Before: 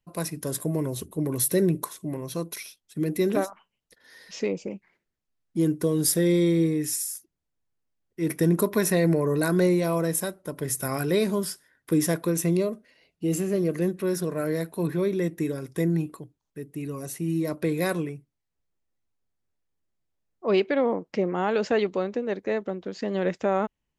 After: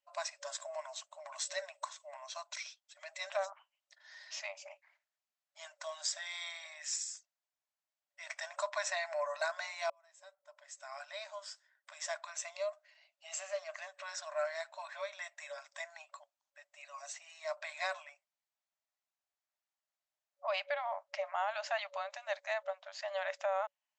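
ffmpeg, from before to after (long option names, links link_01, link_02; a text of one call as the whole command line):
ffmpeg -i in.wav -filter_complex "[0:a]asettb=1/sr,asplit=3[link_01][link_02][link_03];[link_01]atrim=end=22.104[link_04];[link_02]atrim=start=22.1:end=22.54,asetpts=PTS-STARTPTS,afade=type=in:duration=0.004:curve=qsin,afade=type=out:start_time=0.436:duration=0.004:curve=qsin,highshelf=frequency=4700:gain=11[link_05];[link_03]atrim=start=22.536[link_06];[link_04][link_05]acrossfade=duration=0.004:curve1=hsin:curve2=qsin[link_07];[link_07][link_06]acrossfade=duration=0.004:curve1=qsin:curve2=hsin,asplit=2[link_08][link_09];[link_08]atrim=end=9.9,asetpts=PTS-STARTPTS,afade=type=out:start_time=9.896:duration=0.004:curve=hsin[link_10];[link_09]atrim=start=9.9,asetpts=PTS-STARTPTS,afade=type=in:duration=3.51[link_11];[link_10][link_11]concat=n=2:v=0:a=1,afftfilt=real='re*between(b*sr/4096,560,8100)':imag='im*between(b*sr/4096,560,8100)':win_size=4096:overlap=0.75,alimiter=limit=-21dB:level=0:latency=1:release=326,volume=-3dB" out.wav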